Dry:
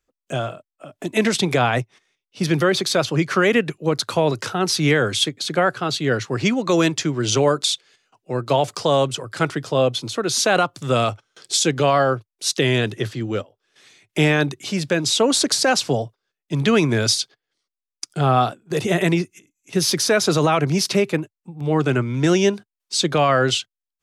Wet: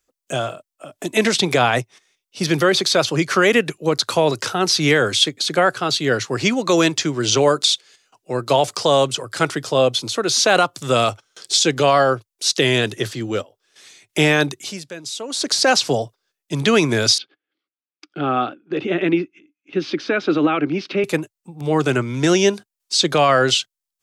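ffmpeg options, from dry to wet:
ffmpeg -i in.wav -filter_complex "[0:a]asettb=1/sr,asplit=3[link_01][link_02][link_03];[link_01]atrim=end=17.184[link_04];[link_02]atrim=start=17.18:end=21.04,asetpts=PTS-STARTPTS,afade=type=in:duration=0.004:curve=qsin,afade=type=out:start_time=3.856:duration=0.004:curve=qsin,highpass=230,equalizer=frequency=300:width_type=q:width=4:gain=9,equalizer=frequency=450:width_type=q:width=4:gain=-5,equalizer=frequency=670:width_type=q:width=4:gain=-8,equalizer=frequency=980:width_type=q:width=4:gain=-10,equalizer=frequency=1900:width_type=q:width=4:gain=-6,lowpass=frequency=2700:width=0.5412,lowpass=frequency=2700:width=1.3066[link_05];[link_03]atrim=start=21.036[link_06];[link_04][link_05]acrossfade=duration=0.004:curve1=hsin:curve2=qsin[link_07];[link_07][link_06]acrossfade=duration=0.004:curve1=qsin:curve2=hsin,asplit=3[link_08][link_09][link_10];[link_08]atrim=end=14.84,asetpts=PTS-STARTPTS,afade=type=out:start_time=14.46:duration=0.38:silence=0.16788[link_11];[link_09]atrim=start=14.84:end=15.28,asetpts=PTS-STARTPTS,volume=-15.5dB[link_12];[link_10]atrim=start=15.28,asetpts=PTS-STARTPTS,afade=type=in:duration=0.38:silence=0.16788[link_13];[link_11][link_12][link_13]concat=n=3:v=0:a=1,acrossover=split=5600[link_14][link_15];[link_15]acompressor=threshold=-38dB:ratio=4:attack=1:release=60[link_16];[link_14][link_16]amix=inputs=2:normalize=0,bass=frequency=250:gain=-5,treble=frequency=4000:gain=7,volume=2.5dB" out.wav

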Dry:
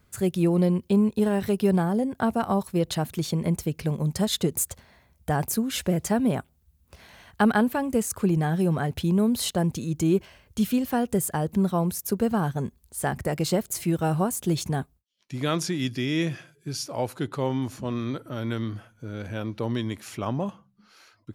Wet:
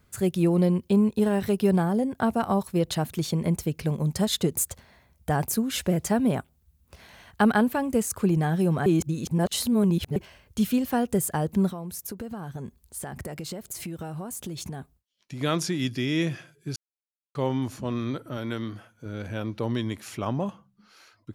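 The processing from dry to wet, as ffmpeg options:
ffmpeg -i in.wav -filter_complex "[0:a]asettb=1/sr,asplit=3[link_01][link_02][link_03];[link_01]atrim=end=11.714[link_04];[link_02]atrim=start=11.71:end=15.41,asetpts=PTS-STARTPTS,afade=type=in:duration=0.004:curve=qsin,afade=type=out:start_time=3.696:duration=0.004:curve=qsin,acompressor=threshold=-31dB:ratio=12:attack=3.2:release=140:knee=1:detection=peak[link_05];[link_03]atrim=start=15.406[link_06];[link_04][link_05]acrossfade=duration=0.004:curve1=hsin:curve2=qsin[link_07];[link_07][link_06]acrossfade=duration=0.004:curve1=qsin:curve2=hsin,asettb=1/sr,asplit=3[link_08][link_09][link_10];[link_08]atrim=end=18.374[link_11];[link_09]atrim=start=18.37:end=19.06,asetpts=PTS-STARTPTS,afade=type=in:duration=0.004:curve=qsin,afade=type=out:start_time=0.686:duration=0.004:curve=qsin,lowshelf=frequency=110:gain=-11[link_12];[link_10]atrim=start=19.056[link_13];[link_11][link_12]acrossfade=duration=0.004:curve1=hsin:curve2=qsin[link_14];[link_14][link_13]acrossfade=duration=0.004:curve1=qsin:curve2=hsin,asplit=5[link_15][link_16][link_17][link_18][link_19];[link_15]atrim=end=8.862[link_20];[link_16]atrim=start=8.858:end=10.162,asetpts=PTS-STARTPTS,areverse[link_21];[link_17]atrim=start=10.158:end=16.76,asetpts=PTS-STARTPTS,afade=type=out:start_time=6.598:duration=0.004:curve=hsin[link_22];[link_18]atrim=start=16.76:end=17.35,asetpts=PTS-STARTPTS,volume=0[link_23];[link_19]atrim=start=17.35,asetpts=PTS-STARTPTS,afade=type=in:duration=0.004:curve=hsin[link_24];[link_20][link_21]acrossfade=duration=0.004:curve1=hsin:curve2=hsin[link_25];[link_22][link_23][link_24]concat=n=3:v=0:a=1[link_26];[link_25][link_26]acrossfade=duration=0.004:curve1=hsin:curve2=hsin" out.wav

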